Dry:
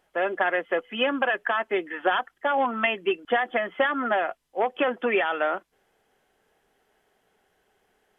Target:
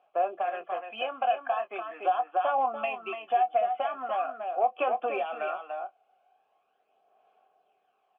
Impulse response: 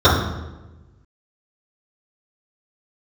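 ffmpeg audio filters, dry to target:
-filter_complex "[0:a]asplit=3[link_01][link_02][link_03];[link_01]bandpass=frequency=730:width_type=q:width=8,volume=0dB[link_04];[link_02]bandpass=frequency=1090:width_type=q:width=8,volume=-6dB[link_05];[link_03]bandpass=frequency=2440:width_type=q:width=8,volume=-9dB[link_06];[link_04][link_05][link_06]amix=inputs=3:normalize=0,asplit=2[link_07][link_08];[link_08]adelay=23,volume=-10dB[link_09];[link_07][link_09]amix=inputs=2:normalize=0,aecho=1:1:291:0.447,asplit=2[link_10][link_11];[link_11]acompressor=threshold=-41dB:ratio=6,volume=0dB[link_12];[link_10][link_12]amix=inputs=2:normalize=0,aphaser=in_gain=1:out_gain=1:delay=1.4:decay=0.4:speed=0.41:type=sinusoidal"

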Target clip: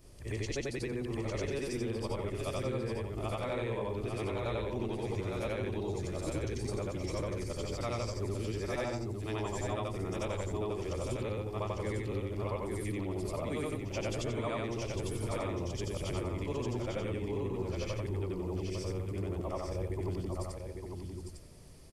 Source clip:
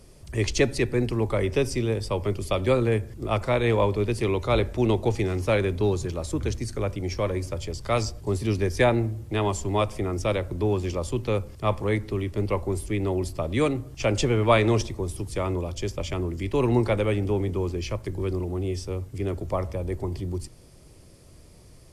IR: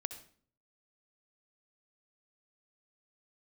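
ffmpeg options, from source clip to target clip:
-af "afftfilt=real='re':imag='-im':win_size=8192:overlap=0.75,acompressor=threshold=-33dB:ratio=6,aecho=1:1:852:0.562"

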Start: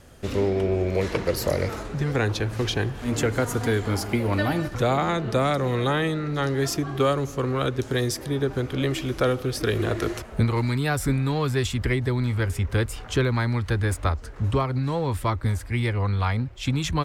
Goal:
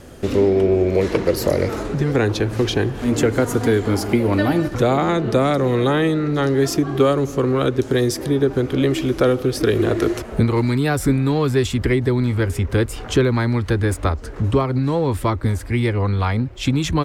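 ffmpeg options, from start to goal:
ffmpeg -i in.wav -filter_complex "[0:a]equalizer=frequency=330:width_type=o:width=1.5:gain=7,asplit=2[link_01][link_02];[link_02]acompressor=threshold=-29dB:ratio=6,volume=1.5dB[link_03];[link_01][link_03]amix=inputs=2:normalize=0" out.wav

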